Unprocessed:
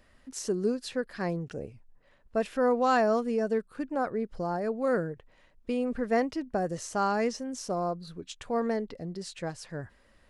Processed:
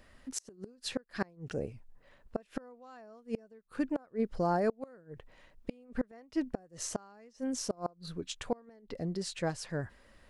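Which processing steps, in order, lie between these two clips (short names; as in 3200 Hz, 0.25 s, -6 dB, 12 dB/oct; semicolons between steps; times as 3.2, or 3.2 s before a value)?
flipped gate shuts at -22 dBFS, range -30 dB; gain +2 dB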